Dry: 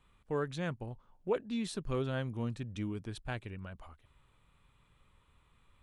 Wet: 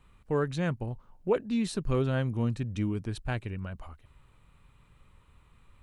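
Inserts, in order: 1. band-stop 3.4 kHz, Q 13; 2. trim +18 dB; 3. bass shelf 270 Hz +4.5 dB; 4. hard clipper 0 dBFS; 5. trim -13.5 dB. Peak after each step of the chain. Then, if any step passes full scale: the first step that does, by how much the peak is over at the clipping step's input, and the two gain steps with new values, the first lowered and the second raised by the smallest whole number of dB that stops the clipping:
-21.0 dBFS, -3.0 dBFS, -2.0 dBFS, -2.0 dBFS, -15.5 dBFS; nothing clips

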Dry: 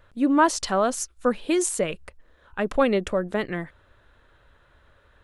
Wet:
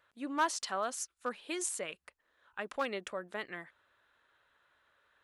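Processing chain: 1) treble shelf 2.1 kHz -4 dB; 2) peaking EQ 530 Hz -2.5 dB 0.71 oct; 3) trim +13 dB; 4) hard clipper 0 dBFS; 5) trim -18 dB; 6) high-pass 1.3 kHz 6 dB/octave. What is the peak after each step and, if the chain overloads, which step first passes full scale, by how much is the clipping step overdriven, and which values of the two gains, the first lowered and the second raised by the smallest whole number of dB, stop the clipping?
-8.5 dBFS, -9.5 dBFS, +3.5 dBFS, 0.0 dBFS, -18.0 dBFS, -18.5 dBFS; step 3, 3.5 dB; step 3 +9 dB, step 5 -14 dB

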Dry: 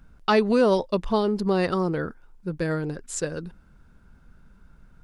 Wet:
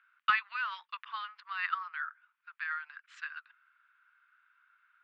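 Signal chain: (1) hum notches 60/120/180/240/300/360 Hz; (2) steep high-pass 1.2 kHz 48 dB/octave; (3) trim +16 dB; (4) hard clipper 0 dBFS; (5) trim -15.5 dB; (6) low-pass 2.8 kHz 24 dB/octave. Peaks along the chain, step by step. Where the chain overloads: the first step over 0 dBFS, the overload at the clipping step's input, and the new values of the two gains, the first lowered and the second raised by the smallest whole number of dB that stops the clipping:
-8.5 dBFS, -12.5 dBFS, +3.5 dBFS, 0.0 dBFS, -15.5 dBFS, -15.0 dBFS; step 3, 3.5 dB; step 3 +12 dB, step 5 -11.5 dB

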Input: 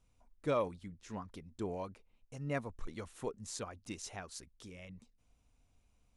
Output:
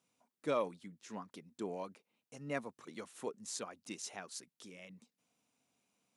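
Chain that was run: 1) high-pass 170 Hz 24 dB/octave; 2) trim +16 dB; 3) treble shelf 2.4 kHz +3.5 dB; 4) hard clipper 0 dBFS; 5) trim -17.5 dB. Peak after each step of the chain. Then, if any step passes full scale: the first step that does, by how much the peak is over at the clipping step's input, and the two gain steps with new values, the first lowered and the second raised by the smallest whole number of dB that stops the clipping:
-20.5 dBFS, -4.5 dBFS, -4.0 dBFS, -4.0 dBFS, -21.5 dBFS; nothing clips

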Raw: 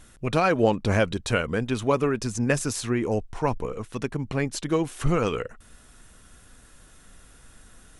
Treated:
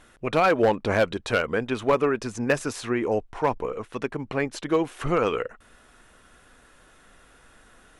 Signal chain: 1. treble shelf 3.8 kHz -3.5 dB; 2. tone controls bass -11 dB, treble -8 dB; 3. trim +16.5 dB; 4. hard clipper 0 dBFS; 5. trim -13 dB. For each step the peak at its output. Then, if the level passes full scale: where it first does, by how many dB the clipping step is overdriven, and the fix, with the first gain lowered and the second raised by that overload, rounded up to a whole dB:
-8.0 dBFS, -9.5 dBFS, +7.0 dBFS, 0.0 dBFS, -13.0 dBFS; step 3, 7.0 dB; step 3 +9.5 dB, step 5 -6 dB

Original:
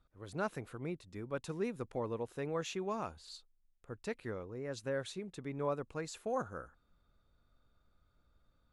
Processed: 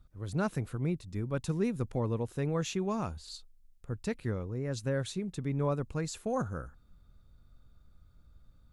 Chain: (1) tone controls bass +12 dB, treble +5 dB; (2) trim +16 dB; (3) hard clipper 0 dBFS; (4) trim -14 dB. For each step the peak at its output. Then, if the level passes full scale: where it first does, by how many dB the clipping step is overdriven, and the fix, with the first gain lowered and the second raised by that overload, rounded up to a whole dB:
-20.0 dBFS, -4.0 dBFS, -4.0 dBFS, -18.0 dBFS; nothing clips

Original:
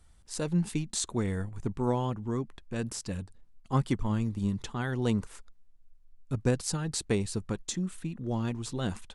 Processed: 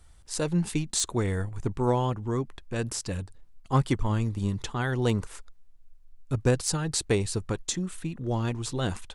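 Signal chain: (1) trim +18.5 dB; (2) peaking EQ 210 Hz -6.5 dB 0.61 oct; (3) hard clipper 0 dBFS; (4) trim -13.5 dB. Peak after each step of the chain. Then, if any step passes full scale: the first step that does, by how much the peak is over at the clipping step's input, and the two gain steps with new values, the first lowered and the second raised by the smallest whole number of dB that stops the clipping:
+5.5 dBFS, +5.5 dBFS, 0.0 dBFS, -13.5 dBFS; step 1, 5.5 dB; step 1 +12.5 dB, step 4 -7.5 dB

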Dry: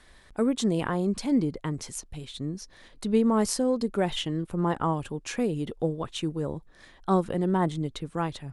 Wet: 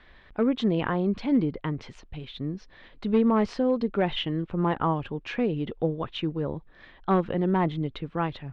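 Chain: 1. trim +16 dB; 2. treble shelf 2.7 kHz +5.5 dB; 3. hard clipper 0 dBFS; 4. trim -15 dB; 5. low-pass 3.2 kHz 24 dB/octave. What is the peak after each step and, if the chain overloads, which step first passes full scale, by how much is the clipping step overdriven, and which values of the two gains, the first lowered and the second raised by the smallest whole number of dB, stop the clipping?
+5.5 dBFS, +10.0 dBFS, 0.0 dBFS, -15.0 dBFS, -14.5 dBFS; step 1, 10.0 dB; step 1 +6 dB, step 4 -5 dB

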